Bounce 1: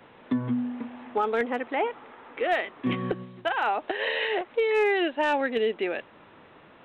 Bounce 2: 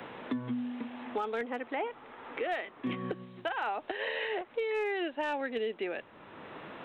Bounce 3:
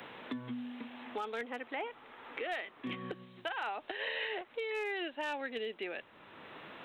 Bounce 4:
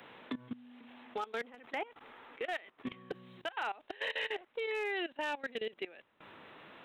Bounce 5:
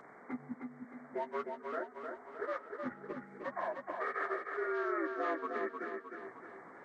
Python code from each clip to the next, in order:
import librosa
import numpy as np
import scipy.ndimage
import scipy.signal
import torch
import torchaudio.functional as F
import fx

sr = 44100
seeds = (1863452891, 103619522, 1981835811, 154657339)

y1 = fx.band_squash(x, sr, depth_pct=70)
y1 = F.gain(torch.from_numpy(y1), -8.0).numpy()
y2 = fx.high_shelf(y1, sr, hz=2000.0, db=10.0)
y2 = F.gain(torch.from_numpy(y2), -6.5).numpy()
y3 = fx.level_steps(y2, sr, step_db=19)
y3 = np.clip(10.0 ** (30.5 / 20.0) * y3, -1.0, 1.0) / 10.0 ** (30.5 / 20.0)
y3 = F.gain(torch.from_numpy(y3), 2.5).numpy()
y4 = fx.partial_stretch(y3, sr, pct=80)
y4 = fx.echo_feedback(y4, sr, ms=309, feedback_pct=51, wet_db=-5.0)
y4 = F.gain(torch.from_numpy(y4), 1.0).numpy()